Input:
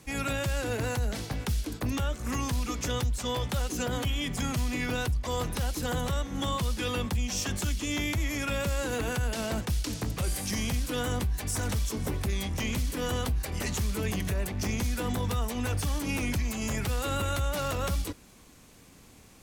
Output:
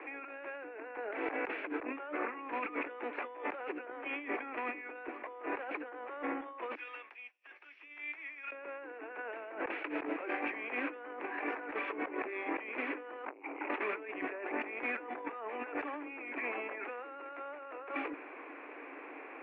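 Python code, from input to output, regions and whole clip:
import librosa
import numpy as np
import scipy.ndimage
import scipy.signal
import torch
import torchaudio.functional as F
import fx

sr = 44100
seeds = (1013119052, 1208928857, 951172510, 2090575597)

y = fx.chain(x, sr, fx.bandpass_q(hz=5700.0, q=5.8),
    fx.over_compress(threshold_db=-51.0, ratio=-1.0), at=(6.75, 8.52))
y = fx.chain(y, sr, fx.vowel_filter(vowel='u'),
    fx.transformer_sat(knee_hz=1700.0), at=(13.25, 13.7))
y = scipy.signal.sosfilt(scipy.signal.cheby1(5, 1.0, [290.0, 2500.0], 'bandpass', fs=sr, output='sos'), y)
y = fx.low_shelf(y, sr, hz=390.0, db=-5.0)
y = fx.over_compress(y, sr, threshold_db=-48.0, ratio=-1.0)
y = y * 10.0 ** (6.5 / 20.0)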